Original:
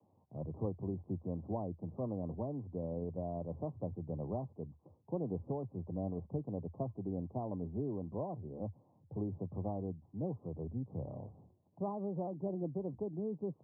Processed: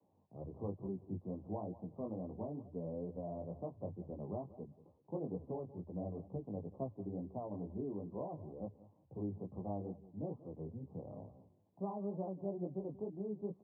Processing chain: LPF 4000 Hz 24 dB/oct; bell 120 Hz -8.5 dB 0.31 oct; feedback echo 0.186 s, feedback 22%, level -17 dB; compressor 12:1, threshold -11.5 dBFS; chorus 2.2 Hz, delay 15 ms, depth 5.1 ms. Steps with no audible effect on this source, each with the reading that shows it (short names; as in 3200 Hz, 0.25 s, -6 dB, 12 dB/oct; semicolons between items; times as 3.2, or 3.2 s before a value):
LPF 4000 Hz: input band ends at 1100 Hz; compressor, threshold -11.5 dBFS: input peak -25.0 dBFS